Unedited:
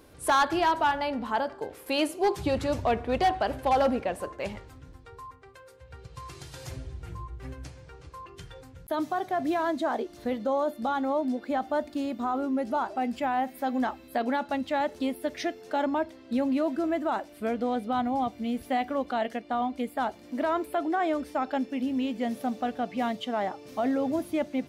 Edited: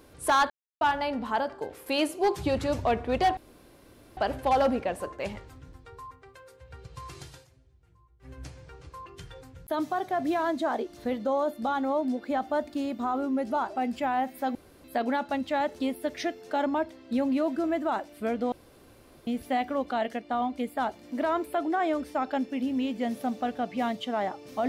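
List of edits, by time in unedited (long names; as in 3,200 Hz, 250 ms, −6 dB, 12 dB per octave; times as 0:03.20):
0:00.50–0:00.81: silence
0:03.37: splice in room tone 0.80 s
0:06.42–0:07.64: duck −22.5 dB, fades 0.25 s
0:13.75–0:14.04: fill with room tone
0:17.72–0:18.47: fill with room tone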